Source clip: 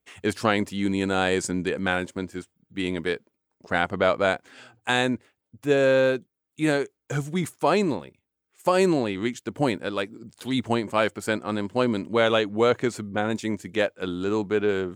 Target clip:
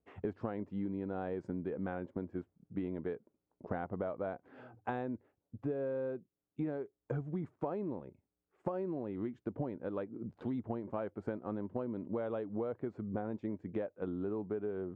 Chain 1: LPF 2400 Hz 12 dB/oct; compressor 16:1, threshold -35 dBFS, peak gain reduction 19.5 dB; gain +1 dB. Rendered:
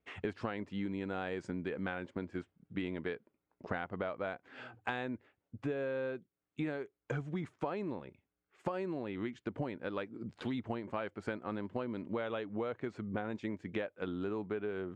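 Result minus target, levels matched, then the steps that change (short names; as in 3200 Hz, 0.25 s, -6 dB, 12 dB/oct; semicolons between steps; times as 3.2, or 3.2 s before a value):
2000 Hz band +9.0 dB
change: LPF 830 Hz 12 dB/oct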